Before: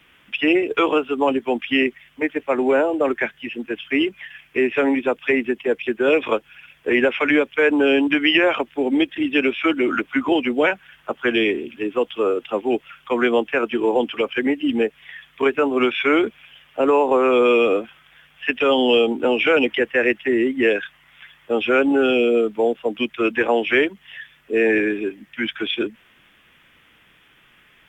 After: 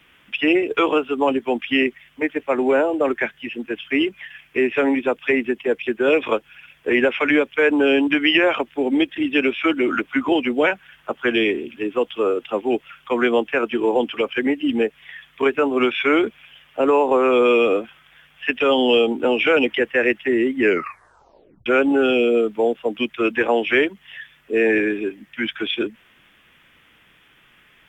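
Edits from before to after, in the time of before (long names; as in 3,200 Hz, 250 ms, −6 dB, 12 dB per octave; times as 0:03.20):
0:20.60: tape stop 1.06 s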